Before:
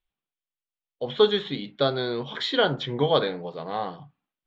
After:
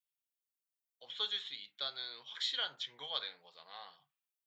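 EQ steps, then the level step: differentiator; bell 320 Hz -9.5 dB 1.8 oct; -1.0 dB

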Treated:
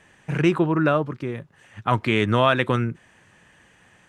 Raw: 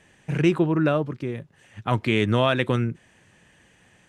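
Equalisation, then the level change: bell 1200 Hz +6 dB 1.3 oct; 0.0 dB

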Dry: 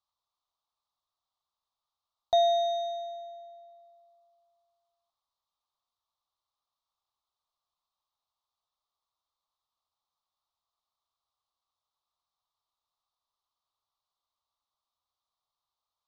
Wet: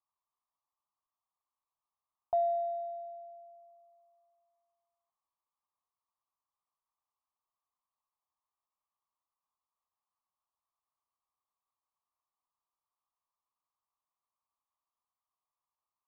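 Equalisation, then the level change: synth low-pass 1100 Hz, resonance Q 2.7; air absorption 440 m; -8.0 dB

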